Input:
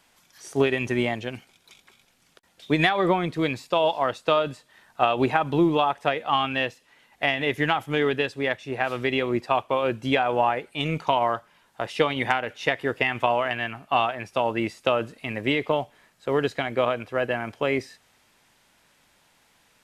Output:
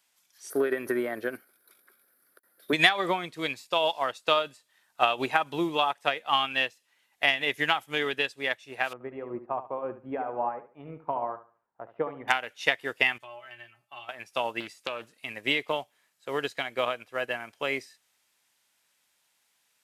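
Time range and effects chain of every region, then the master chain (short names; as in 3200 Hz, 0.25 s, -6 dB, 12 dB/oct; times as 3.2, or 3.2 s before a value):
0.5–2.73 compressor 5:1, threshold -26 dBFS + EQ curve 140 Hz 0 dB, 330 Hz +14 dB, 580 Hz +12 dB, 850 Hz 0 dB, 1500 Hz +14 dB, 2800 Hz -12 dB, 4600 Hz -3 dB, 7000 Hz -15 dB, 11000 Hz +12 dB
8.93–12.28 Bessel low-pass 830 Hz, order 4 + feedback echo 71 ms, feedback 36%, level -9 dB
13.18–14.09 resonator 120 Hz, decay 0.16 s, harmonics odd, mix 90% + compressor 2.5:1, threshold -32 dBFS
14.6–15.17 compressor 2.5:1, threshold -24 dBFS + Doppler distortion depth 0.36 ms
whole clip: tilt +3 dB/oct; upward expander 1.5:1, over -44 dBFS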